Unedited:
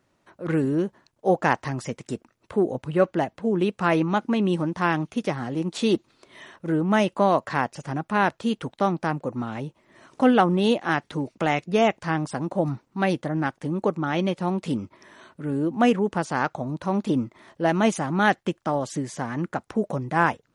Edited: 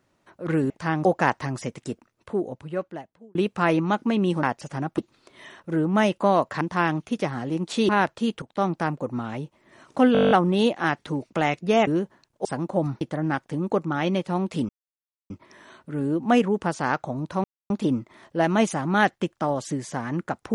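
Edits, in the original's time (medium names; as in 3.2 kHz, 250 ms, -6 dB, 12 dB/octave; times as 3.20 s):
0.70–1.28 s: swap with 11.92–12.27 s
2.01–3.58 s: fade out
4.66–5.94 s: swap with 7.57–8.12 s
8.65–8.98 s: fade in equal-power, from -14.5 dB
10.36 s: stutter 0.02 s, 10 plays
12.83–13.13 s: delete
14.81 s: insert silence 0.61 s
16.95 s: insert silence 0.26 s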